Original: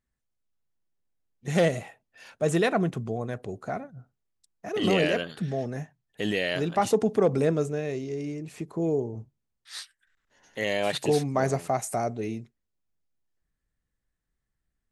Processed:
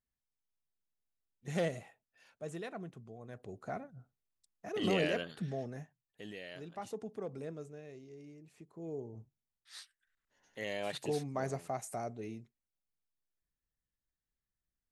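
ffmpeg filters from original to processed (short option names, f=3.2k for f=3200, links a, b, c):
-af "volume=9dB,afade=t=out:st=1.49:d=1.08:silence=0.354813,afade=t=in:st=3.19:d=0.54:silence=0.266073,afade=t=out:st=5.42:d=0.85:silence=0.266073,afade=t=in:st=8.77:d=0.43:silence=0.398107"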